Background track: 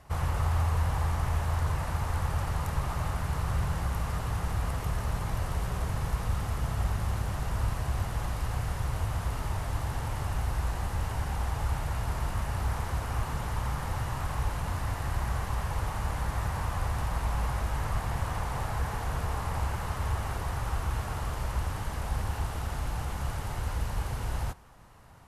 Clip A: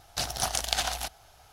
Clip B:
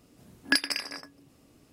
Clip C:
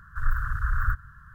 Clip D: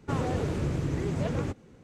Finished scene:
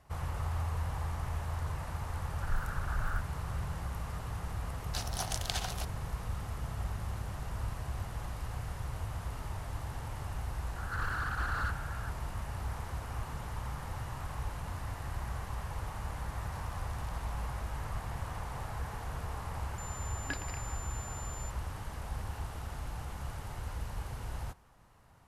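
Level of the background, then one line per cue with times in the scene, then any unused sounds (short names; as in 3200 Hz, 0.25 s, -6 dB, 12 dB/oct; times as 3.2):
background track -7.5 dB
2.26 add C -9.5 dB
4.77 add A -8.5 dB
10.76 add C -14 dB + overdrive pedal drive 32 dB, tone 1100 Hz, clips at -11 dBFS
16.36 add A -16.5 dB + compressor 4:1, threshold -45 dBFS
19.78 add B -14 dB + pulse-width modulation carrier 7200 Hz
not used: D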